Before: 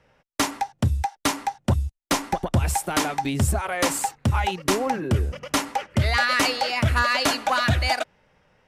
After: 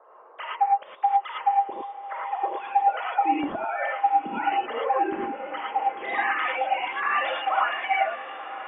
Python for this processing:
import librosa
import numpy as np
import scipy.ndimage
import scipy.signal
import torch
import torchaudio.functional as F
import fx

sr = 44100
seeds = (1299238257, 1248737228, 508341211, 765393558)

p1 = fx.sine_speech(x, sr)
p2 = fx.dmg_noise_band(p1, sr, seeds[0], low_hz=410.0, high_hz=1200.0, level_db=-49.0)
p3 = p2 + fx.echo_diffused(p2, sr, ms=1006, feedback_pct=58, wet_db=-12.5, dry=0)
p4 = fx.rev_gated(p3, sr, seeds[1], gate_ms=130, shape='rising', drr_db=-4.0)
y = p4 * librosa.db_to_amplitude(-7.5)